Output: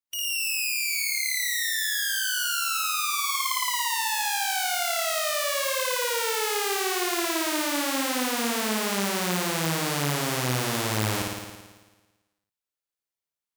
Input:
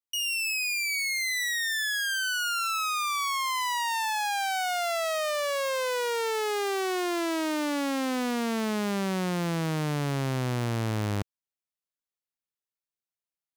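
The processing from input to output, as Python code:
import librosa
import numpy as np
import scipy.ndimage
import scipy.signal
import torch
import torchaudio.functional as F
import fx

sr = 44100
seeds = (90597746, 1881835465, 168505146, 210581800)

y = fx.spec_flatten(x, sr, power=0.6)
y = fx.room_flutter(y, sr, wall_m=9.5, rt60_s=1.3)
y = F.gain(torch.from_numpy(y), -1.5).numpy()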